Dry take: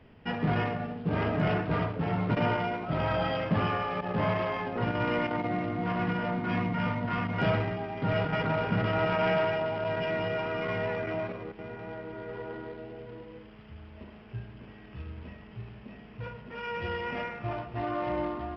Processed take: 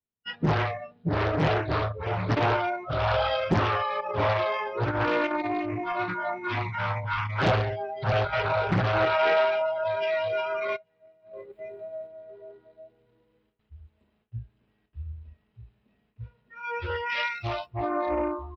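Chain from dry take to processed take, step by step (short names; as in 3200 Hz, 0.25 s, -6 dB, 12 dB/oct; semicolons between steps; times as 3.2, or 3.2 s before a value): bell 3900 Hz +13.5 dB 0.23 oct; gate with hold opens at -39 dBFS; 10.76–12.07 negative-ratio compressor -40 dBFS, ratio -0.5; 17.09–17.65 high shelf 2000 Hz -> 2800 Hz +12 dB; feedback echo 0.834 s, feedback 15%, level -23 dB; spectral noise reduction 27 dB; Doppler distortion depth 1 ms; gain +5 dB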